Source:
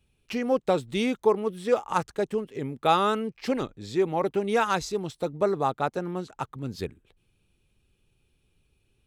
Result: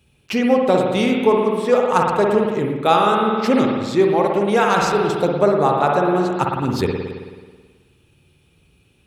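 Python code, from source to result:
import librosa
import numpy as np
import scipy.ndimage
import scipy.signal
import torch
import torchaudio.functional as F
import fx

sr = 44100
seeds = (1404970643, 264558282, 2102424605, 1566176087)

y = scipy.signal.sosfilt(scipy.signal.butter(2, 67.0, 'highpass', fs=sr, output='sos'), x)
y = fx.rev_spring(y, sr, rt60_s=1.5, pass_ms=(54,), chirp_ms=70, drr_db=0.0)
y = fx.rider(y, sr, range_db=4, speed_s=0.5)
y = y * librosa.db_to_amplitude(7.5)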